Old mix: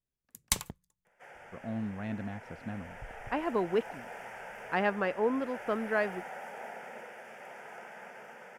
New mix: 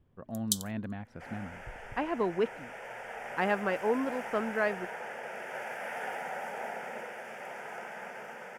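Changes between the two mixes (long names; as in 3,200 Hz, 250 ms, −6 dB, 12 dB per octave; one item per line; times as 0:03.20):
speech: entry −1.35 s
first sound: add linear-phase brick-wall high-pass 3,000 Hz
second sound +5.0 dB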